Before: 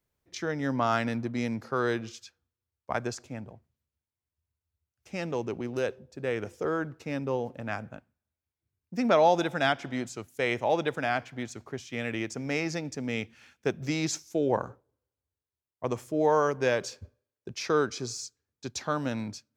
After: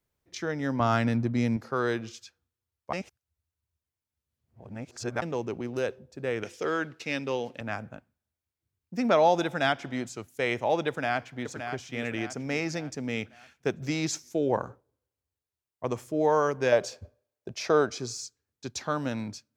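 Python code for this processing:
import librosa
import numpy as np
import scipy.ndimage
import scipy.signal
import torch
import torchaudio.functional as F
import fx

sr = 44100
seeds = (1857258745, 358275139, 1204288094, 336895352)

y = fx.low_shelf(x, sr, hz=190.0, db=11.0, at=(0.8, 1.57))
y = fx.weighting(y, sr, curve='D', at=(6.43, 7.61))
y = fx.echo_throw(y, sr, start_s=10.88, length_s=0.62, ms=570, feedback_pct=45, wet_db=-7.5)
y = fx.peak_eq(y, sr, hz=660.0, db=11.0, octaves=0.59, at=(16.72, 17.97))
y = fx.edit(y, sr, fx.reverse_span(start_s=2.93, length_s=2.29), tone=tone)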